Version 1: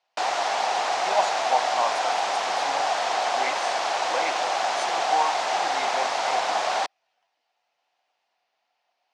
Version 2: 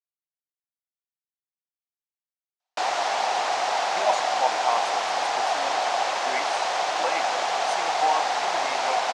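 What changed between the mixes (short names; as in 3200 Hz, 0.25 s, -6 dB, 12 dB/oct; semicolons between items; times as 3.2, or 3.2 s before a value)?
speech: entry +2.90 s; background: entry +2.60 s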